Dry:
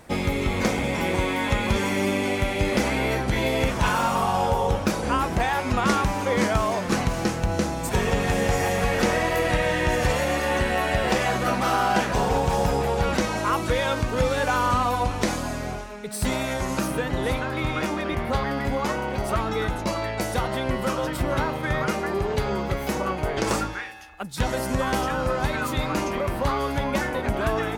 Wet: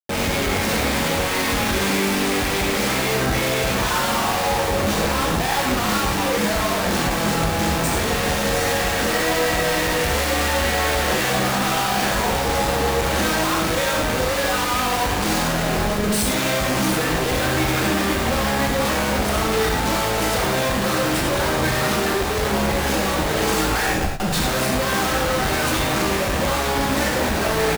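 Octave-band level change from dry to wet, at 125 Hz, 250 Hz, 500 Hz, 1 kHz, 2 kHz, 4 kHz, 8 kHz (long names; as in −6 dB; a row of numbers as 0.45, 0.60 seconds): +2.0, +3.5, +3.0, +3.0, +5.5, +9.5, +10.0 decibels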